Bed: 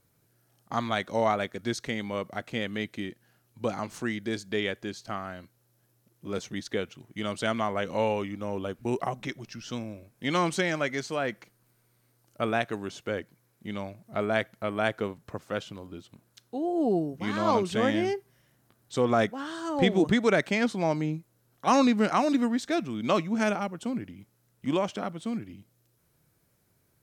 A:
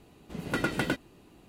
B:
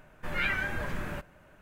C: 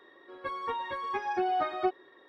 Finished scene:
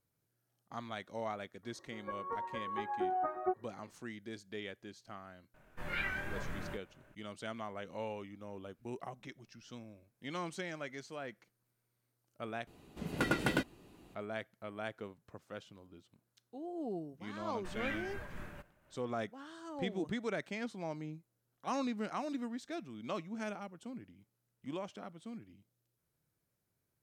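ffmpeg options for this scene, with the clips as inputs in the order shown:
ffmpeg -i bed.wav -i cue0.wav -i cue1.wav -i cue2.wav -filter_complex "[2:a]asplit=2[link_01][link_02];[0:a]volume=-14.5dB[link_03];[3:a]lowpass=frequency=1500:width=0.5412,lowpass=frequency=1500:width=1.3066[link_04];[link_01]asplit=2[link_05][link_06];[link_06]adelay=24,volume=-3dB[link_07];[link_05][link_07]amix=inputs=2:normalize=0[link_08];[link_02]tremolo=f=4:d=0.36[link_09];[link_03]asplit=2[link_10][link_11];[link_10]atrim=end=12.674[link_12];[1:a]atrim=end=1.48,asetpts=PTS-STARTPTS,volume=-3dB[link_13];[link_11]atrim=start=14.146[link_14];[link_04]atrim=end=2.28,asetpts=PTS-STARTPTS,volume=-5.5dB,afade=type=in:duration=0.004:curve=hsin,afade=type=out:start_time=2.276:duration=0.004:curve=hsin,adelay=1630[link_15];[link_08]atrim=end=1.61,asetpts=PTS-STARTPTS,volume=-9dB,afade=type=in:duration=0.004:curve=hsin,afade=type=out:start_time=1.606:duration=0.004:curve=hsin,adelay=5540[link_16];[link_09]atrim=end=1.61,asetpts=PTS-STARTPTS,volume=-10.5dB,afade=type=in:duration=0.004:curve=hsin,afade=type=out:start_time=1.606:duration=0.004:curve=hsin,adelay=17410[link_17];[link_12][link_13]acrossfade=duration=0.004:curve1=hsin:curve2=hsin[link_18];[link_18][link_14]acrossfade=duration=0.004:curve1=hsin:curve2=hsin[link_19];[link_19][link_15][link_16][link_17]amix=inputs=4:normalize=0" out.wav

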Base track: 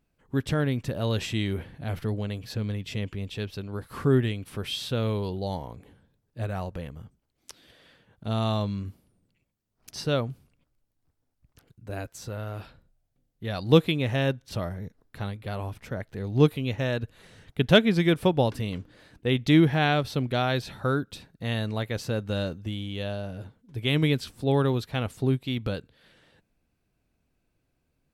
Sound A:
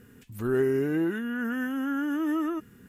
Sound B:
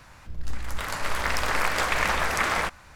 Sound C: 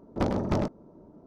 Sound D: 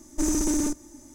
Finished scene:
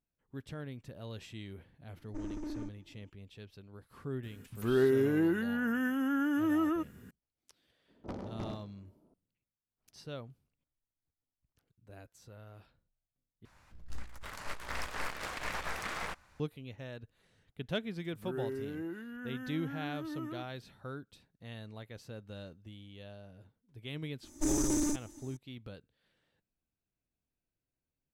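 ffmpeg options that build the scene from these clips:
ffmpeg -i bed.wav -i cue0.wav -i cue1.wav -i cue2.wav -i cue3.wav -filter_complex "[4:a]asplit=2[link_01][link_02];[1:a]asplit=2[link_03][link_04];[0:a]volume=-17.5dB[link_05];[link_01]lowpass=2100[link_06];[3:a]aecho=1:1:65|130|195|260|325:0.224|0.116|0.0605|0.0315|0.0164[link_07];[2:a]aeval=exprs='(tanh(11.2*val(0)+0.75)-tanh(0.75))/11.2':channel_layout=same[link_08];[link_04]highpass=61[link_09];[link_05]asplit=2[link_10][link_11];[link_10]atrim=end=13.454[link_12];[link_08]atrim=end=2.95,asetpts=PTS-STARTPTS,volume=-9.5dB[link_13];[link_11]atrim=start=16.396[link_14];[link_06]atrim=end=1.14,asetpts=PTS-STARTPTS,volume=-15dB,afade=type=in:duration=0.004:curve=hsin,afade=type=out:start_time=1.136:duration=0.004:curve=hsin,adelay=1960[link_15];[link_03]atrim=end=2.88,asetpts=PTS-STARTPTS,volume=-2dB,afade=type=in:duration=0.004:curve=hsin,afade=type=out:start_time=2.876:duration=0.004:curve=hsin,adelay=4230[link_16];[link_07]atrim=end=1.26,asetpts=PTS-STARTPTS,volume=-15.5dB,afade=type=in:duration=0.004:curve=hsin,afade=type=out:start_time=1.256:duration=0.004:curve=hsin,adelay=7880[link_17];[link_09]atrim=end=2.88,asetpts=PTS-STARTPTS,volume=-13.5dB,afade=type=in:duration=0.004:curve=hsin,afade=type=out:start_time=2.876:duration=0.004:curve=hsin,adelay=17830[link_18];[link_02]atrim=end=1.14,asetpts=PTS-STARTPTS,volume=-6dB,afade=type=in:duration=0.004:curve=hsin,afade=type=out:start_time=1.136:duration=0.004:curve=hsin,adelay=24230[link_19];[link_12][link_13]acrossfade=duration=0.004:curve1=hsin:curve2=hsin[link_20];[link_20][link_14]acrossfade=duration=0.004:curve1=hsin:curve2=hsin[link_21];[link_21][link_15][link_16][link_17][link_18][link_19]amix=inputs=6:normalize=0" out.wav

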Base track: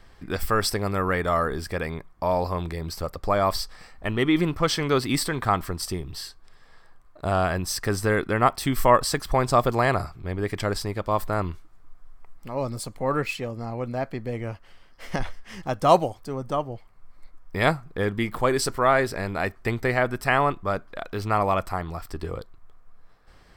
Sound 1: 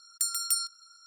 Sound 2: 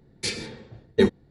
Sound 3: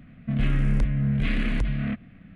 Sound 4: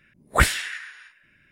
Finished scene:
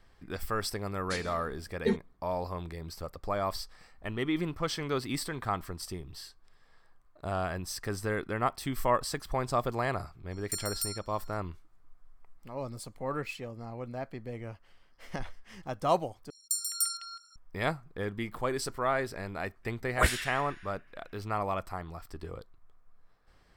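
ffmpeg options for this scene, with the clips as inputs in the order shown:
ffmpeg -i bed.wav -i cue0.wav -i cue1.wav -i cue2.wav -i cue3.wav -filter_complex "[1:a]asplit=2[link_01][link_02];[0:a]volume=-9.5dB[link_03];[2:a]aecho=1:1:4.4:0.65[link_04];[link_01]asplit=2[link_05][link_06];[link_06]adelay=12,volume=-12.5dB[link_07];[link_05][link_07]amix=inputs=2:normalize=0[link_08];[link_02]acrossover=split=530|3700[link_09][link_10][link_11];[link_09]adelay=80[link_12];[link_10]adelay=210[link_13];[link_12][link_13][link_11]amix=inputs=3:normalize=0[link_14];[link_03]asplit=2[link_15][link_16];[link_15]atrim=end=16.304[link_17];[link_14]atrim=end=1.06,asetpts=PTS-STARTPTS,volume=-1.5dB[link_18];[link_16]atrim=start=17.356[link_19];[link_04]atrim=end=1.3,asetpts=PTS-STARTPTS,volume=-12dB,afade=type=in:duration=0.004:curve=hsin,afade=type=out:start_time=1.296:duration=0.004:curve=hsin,adelay=870[link_20];[link_08]atrim=end=1.06,asetpts=PTS-STARTPTS,volume=-6.5dB,afade=type=in:duration=0.004:curve=hsin,afade=type=out:start_time=1.056:duration=0.004:curve=hsin,adelay=10310[link_21];[4:a]atrim=end=1.51,asetpts=PTS-STARTPTS,volume=-8dB,afade=type=in:duration=0.004:curve=hsin,afade=type=out:start_time=1.506:duration=0.004:curve=hsin,adelay=19630[link_22];[link_17][link_18]acrossfade=duration=0.004:curve1=hsin:curve2=hsin[link_23];[link_23][link_19]acrossfade=duration=0.004:curve1=hsin:curve2=hsin[link_24];[link_24][link_20][link_21][link_22]amix=inputs=4:normalize=0" out.wav

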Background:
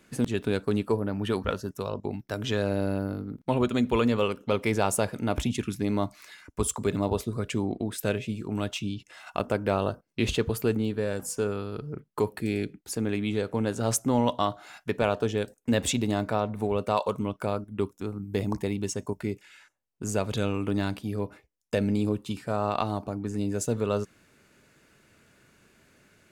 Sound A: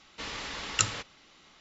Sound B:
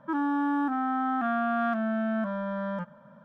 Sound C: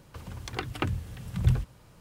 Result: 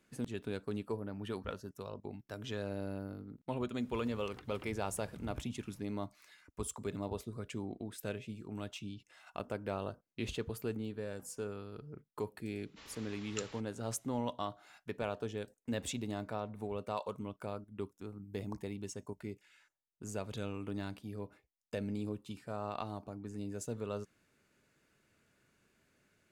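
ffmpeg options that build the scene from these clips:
ffmpeg -i bed.wav -i cue0.wav -i cue1.wav -i cue2.wav -filter_complex "[0:a]volume=-12.5dB[link_01];[3:a]acompressor=threshold=-44dB:ratio=2:attack=1.7:release=255:knee=1:detection=peak,atrim=end=2,asetpts=PTS-STARTPTS,volume=-10dB,afade=type=in:duration=0.004:curve=hsin,afade=type=out:start_time=1.996:duration=0.004:curve=hsin,adelay=3800[link_02];[1:a]atrim=end=1.6,asetpts=PTS-STARTPTS,volume=-17dB,afade=type=in:duration=0.004:curve=hsin,afade=type=out:start_time=1.596:duration=0.004:curve=hsin,adelay=12580[link_03];[link_01][link_02][link_03]amix=inputs=3:normalize=0" out.wav

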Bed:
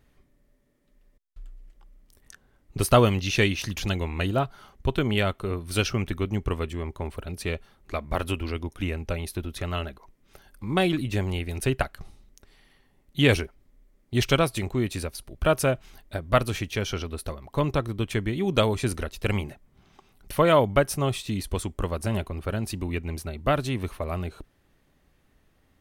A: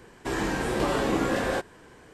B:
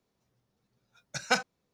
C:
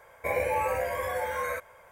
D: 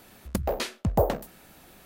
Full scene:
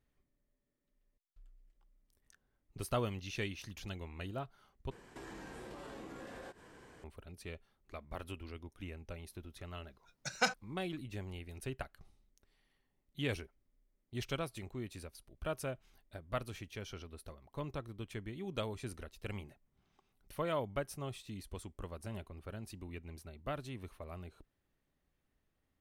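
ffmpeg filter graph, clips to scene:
ffmpeg -i bed.wav -i cue0.wav -i cue1.wav -filter_complex "[0:a]volume=-17dB[link_01];[1:a]acompressor=threshold=-40dB:ratio=6:attack=3.2:release=140:knee=1:detection=peak[link_02];[link_01]asplit=2[link_03][link_04];[link_03]atrim=end=4.914[link_05];[link_02]atrim=end=2.13,asetpts=PTS-STARTPTS,volume=-6.5dB[link_06];[link_04]atrim=start=7.036[link_07];[2:a]atrim=end=1.73,asetpts=PTS-STARTPTS,volume=-5dB,afade=type=in:duration=0.004:curve=hsin,afade=type=out:start_time=1.726:duration=0.004:curve=hsin,adelay=9110[link_08];[link_05][link_06]acrossfade=duration=0.004:curve1=hsin:curve2=hsin[link_09];[link_09][link_07]acrossfade=duration=0.004:curve1=hsin:curve2=hsin[link_10];[link_10][link_08]amix=inputs=2:normalize=0" out.wav

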